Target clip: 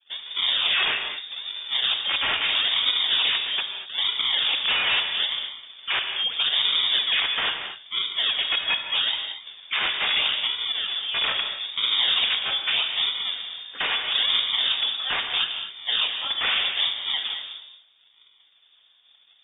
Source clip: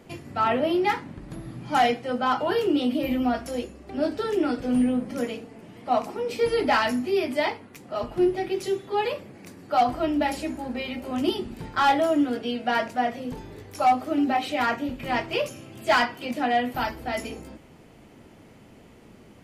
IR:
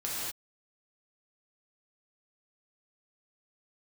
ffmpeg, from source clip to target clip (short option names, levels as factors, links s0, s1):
-filter_complex "[0:a]acrusher=samples=25:mix=1:aa=0.000001:lfo=1:lforange=40:lforate=0.78,aeval=exprs='(mod(11.2*val(0)+1,2)-1)/11.2':c=same,agate=range=0.0224:threshold=0.00891:ratio=3:detection=peak,asplit=2[s0][s1];[1:a]atrim=start_sample=2205[s2];[s1][s2]afir=irnorm=-1:irlink=0,volume=0.447[s3];[s0][s3]amix=inputs=2:normalize=0,lowpass=f=3100:t=q:w=0.5098,lowpass=f=3100:t=q:w=0.6013,lowpass=f=3100:t=q:w=0.9,lowpass=f=3100:t=q:w=2.563,afreqshift=-3700"